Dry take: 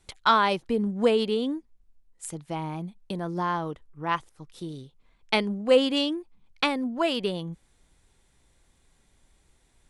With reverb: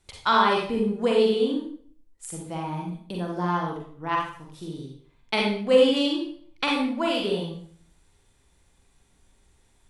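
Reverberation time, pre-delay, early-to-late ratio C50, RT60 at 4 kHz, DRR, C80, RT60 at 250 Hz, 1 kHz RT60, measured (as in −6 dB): 0.55 s, 39 ms, 1.5 dB, 0.45 s, −2.0 dB, 6.0 dB, 0.60 s, 0.50 s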